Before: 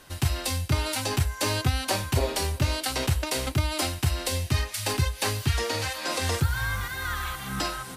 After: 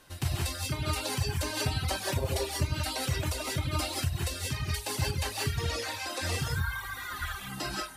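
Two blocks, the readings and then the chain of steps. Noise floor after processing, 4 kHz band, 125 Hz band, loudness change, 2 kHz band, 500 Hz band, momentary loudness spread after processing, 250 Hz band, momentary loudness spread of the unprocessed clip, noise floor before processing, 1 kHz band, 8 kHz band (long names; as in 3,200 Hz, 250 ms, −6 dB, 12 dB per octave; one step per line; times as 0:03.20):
−42 dBFS, −4.5 dB, −4.5 dB, −4.5 dB, −4.5 dB, −5.0 dB, 4 LU, −5.0 dB, 4 LU, −40 dBFS, −5.0 dB, −4.5 dB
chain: reverb whose tail is shaped and stops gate 210 ms rising, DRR −3 dB
reverb reduction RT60 1.5 s
level −6.5 dB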